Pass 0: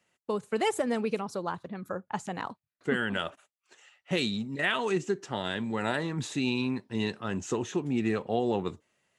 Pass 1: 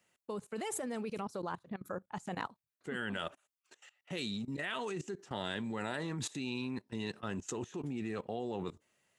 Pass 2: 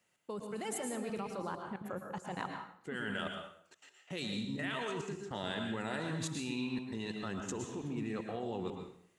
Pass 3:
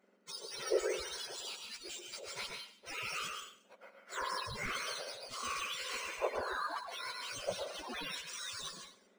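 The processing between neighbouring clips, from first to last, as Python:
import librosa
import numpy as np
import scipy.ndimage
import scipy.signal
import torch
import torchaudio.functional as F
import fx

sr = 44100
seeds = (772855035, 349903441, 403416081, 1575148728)

y1 = fx.high_shelf(x, sr, hz=8900.0, db=7.5)
y1 = fx.level_steps(y1, sr, step_db=19)
y2 = fx.rev_plate(y1, sr, seeds[0], rt60_s=0.61, hf_ratio=0.85, predelay_ms=100, drr_db=3.0)
y2 = y2 * 10.0 ** (-1.5 / 20.0)
y3 = fx.octave_mirror(y2, sr, pivot_hz=2000.0)
y3 = np.interp(np.arange(len(y3)), np.arange(len(y3))[::3], y3[::3])
y3 = y3 * 10.0 ** (4.5 / 20.0)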